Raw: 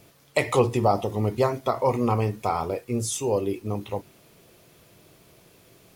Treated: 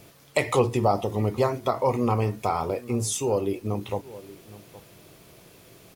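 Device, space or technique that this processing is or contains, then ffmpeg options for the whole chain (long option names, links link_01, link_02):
parallel compression: -filter_complex "[0:a]asplit=2[link_01][link_02];[link_02]adelay=816.3,volume=-21dB,highshelf=frequency=4000:gain=-18.4[link_03];[link_01][link_03]amix=inputs=2:normalize=0,asplit=2[link_04][link_05];[link_05]acompressor=threshold=-32dB:ratio=6,volume=0dB[link_06];[link_04][link_06]amix=inputs=2:normalize=0,volume=-2.5dB"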